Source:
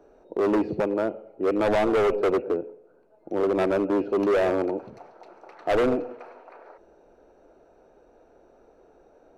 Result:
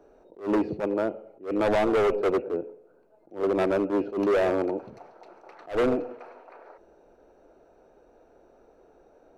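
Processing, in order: attacks held to a fixed rise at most 200 dB/s; trim -1 dB

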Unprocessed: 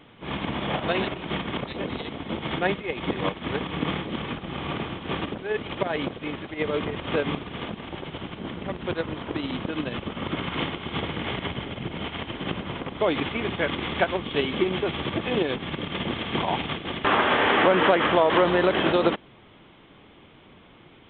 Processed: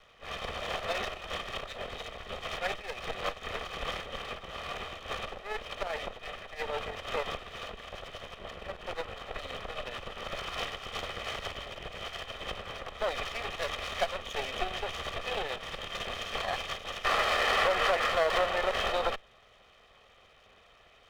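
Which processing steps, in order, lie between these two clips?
comb filter that takes the minimum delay 1.6 ms; peaking EQ 150 Hz -14.5 dB 1.8 oct; trim -3.5 dB

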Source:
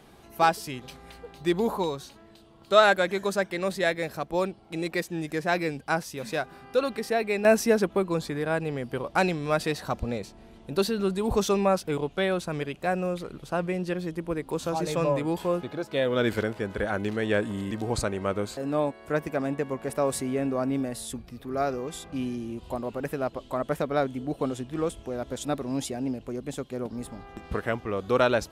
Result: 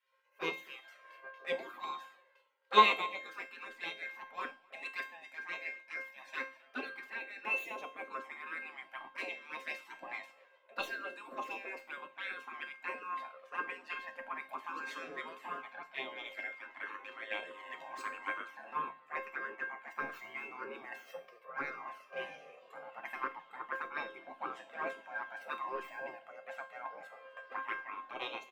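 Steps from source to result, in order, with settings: tracing distortion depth 0.022 ms; spectral gate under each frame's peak -15 dB weak; high-pass 270 Hz 24 dB/octave; peaking EQ 10 kHz -13 dB 1.1 oct; touch-sensitive flanger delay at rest 2.2 ms, full sweep at -32.5 dBFS; in parallel at +2 dB: compression, threshold -55 dBFS, peak gain reduction 25 dB; on the sum: resonant high shelf 3.1 kHz -8 dB, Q 1.5; feedback comb 530 Hz, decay 0.55 s, mix 90%; gain riding within 4 dB 0.5 s; delay 264 ms -20 dB; on a send at -9 dB: reverberation RT60 0.35 s, pre-delay 7 ms; on the sum: three bands expanded up and down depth 100%; trim +15 dB

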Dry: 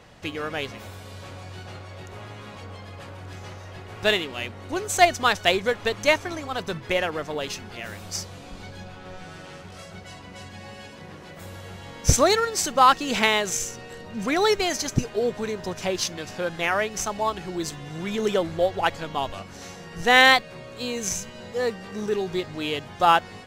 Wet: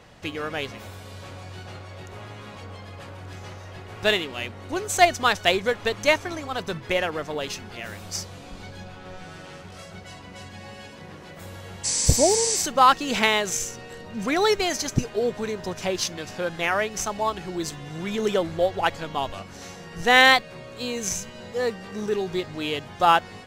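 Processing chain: spectral replace 11.87–12.57 s, 990–11000 Hz after

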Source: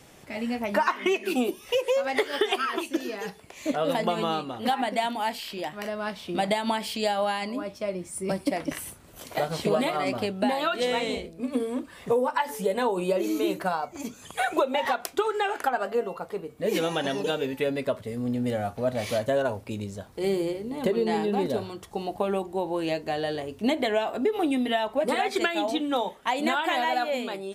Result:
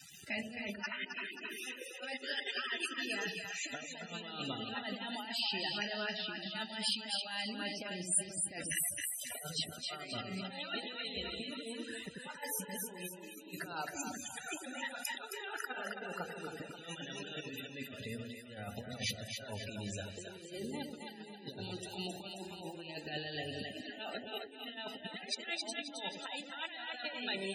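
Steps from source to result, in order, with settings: thinning echo 308 ms, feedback 41%, high-pass 480 Hz, level -17 dB; dynamic bell 830 Hz, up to -5 dB, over -38 dBFS, Q 1; word length cut 8-bit, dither none; compressor with a negative ratio -34 dBFS, ratio -0.5; amplifier tone stack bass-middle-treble 5-5-5; comb of notches 1.1 kHz; two-band feedback delay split 600 Hz, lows 92 ms, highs 267 ms, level -4 dB; loudest bins only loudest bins 64; random flutter of the level, depth 55%; trim +10.5 dB

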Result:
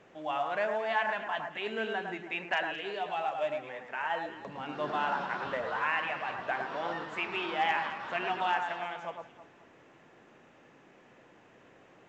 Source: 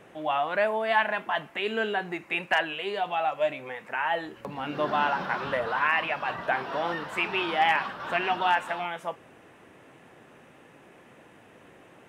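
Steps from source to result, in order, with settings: bass shelf 100 Hz -4.5 dB; on a send: echo whose repeats swap between lows and highs 107 ms, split 1.9 kHz, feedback 54%, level -5 dB; on the sum: trim -6.5 dB; µ-law 128 kbps 16 kHz

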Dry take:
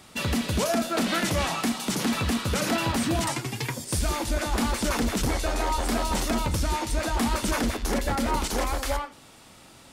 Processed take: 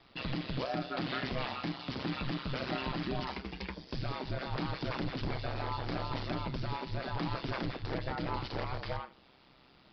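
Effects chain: resampled via 11.025 kHz; ring modulator 65 Hz; trim -7 dB

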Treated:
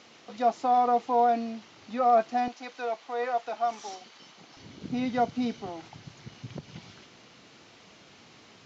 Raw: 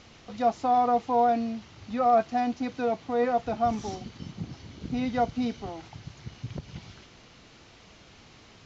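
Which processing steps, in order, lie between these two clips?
high-pass 250 Hz 12 dB/octave, from 2.48 s 640 Hz, from 4.57 s 150 Hz

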